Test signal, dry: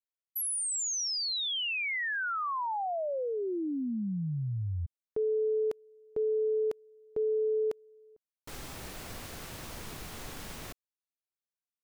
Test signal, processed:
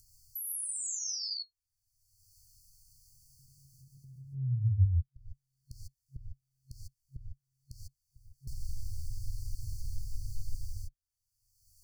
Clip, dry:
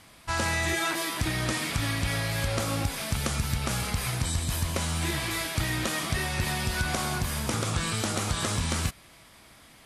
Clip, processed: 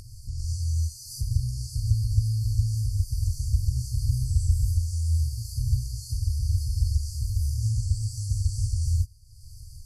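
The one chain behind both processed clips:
reverb whose tail is shaped and stops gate 170 ms rising, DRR −7 dB
brick-wall band-stop 130–4,300 Hz
spectral tilt −2.5 dB per octave
upward compression, threshold −23 dBFS
level −7.5 dB

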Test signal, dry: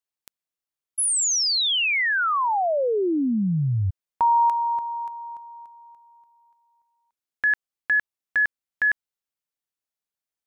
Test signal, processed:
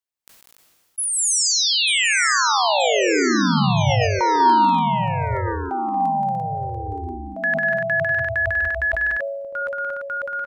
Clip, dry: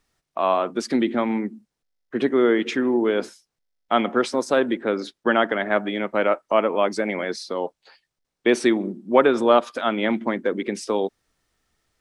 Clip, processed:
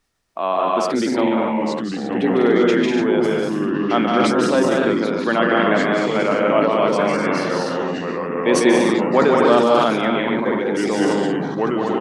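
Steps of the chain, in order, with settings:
loudspeakers that aren't time-aligned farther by 51 metres −4 dB, 67 metres −3 dB, 85 metres −5 dB, 99 metres −6 dB
delay with pitch and tempo change per echo 707 ms, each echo −3 semitones, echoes 3, each echo −6 dB
level that may fall only so fast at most 32 dB per second
level −1 dB

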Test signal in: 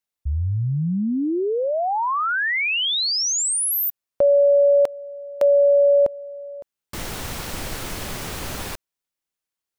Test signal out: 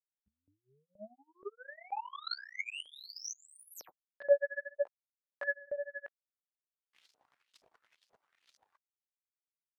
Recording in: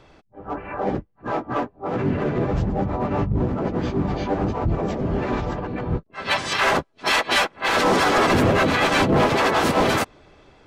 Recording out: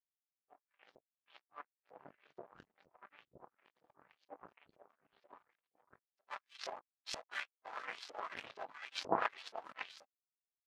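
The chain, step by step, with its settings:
reverb reduction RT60 1.4 s
multi-voice chorus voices 6, 0.9 Hz, delay 18 ms, depth 4.5 ms
power curve on the samples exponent 3
auto-filter band-pass saw up 2.1 Hz 540–5,600 Hz
level +2 dB

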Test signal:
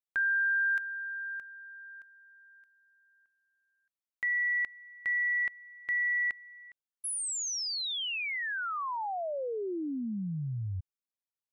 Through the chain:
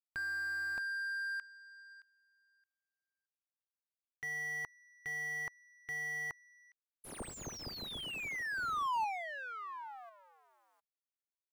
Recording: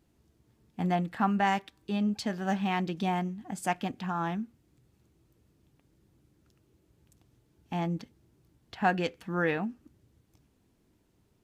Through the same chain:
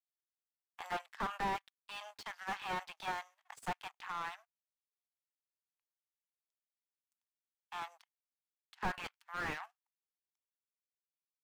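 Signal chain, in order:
power curve on the samples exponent 2
Butterworth high-pass 890 Hz 36 dB per octave
in parallel at +1 dB: output level in coarse steps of 23 dB
on the sum: slew-rate limiting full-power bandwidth 7.3 Hz
level +10 dB

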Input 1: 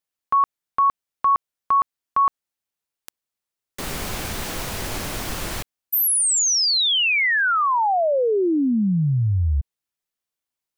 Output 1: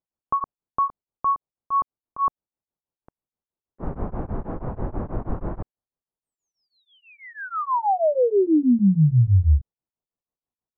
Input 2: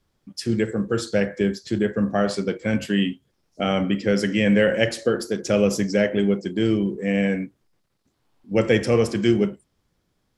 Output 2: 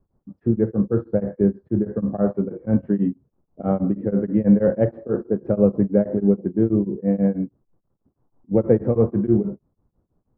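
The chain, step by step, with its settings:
low-pass filter 1,100 Hz 24 dB per octave
low-shelf EQ 460 Hz +6.5 dB
tremolo along a rectified sine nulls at 6.2 Hz

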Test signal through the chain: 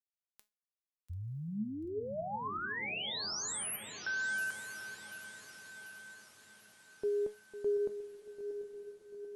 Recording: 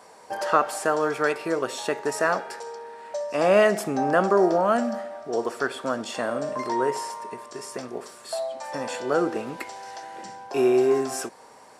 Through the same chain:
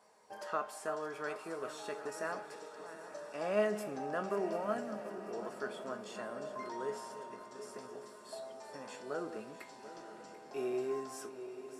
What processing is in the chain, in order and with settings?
feedback delay that plays each chunk backwards 370 ms, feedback 72%, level −13 dB
tuned comb filter 210 Hz, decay 0.24 s, harmonics all, mix 70%
feedback delay with all-pass diffusion 1,003 ms, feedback 51%, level −13.5 dB
level −8.5 dB

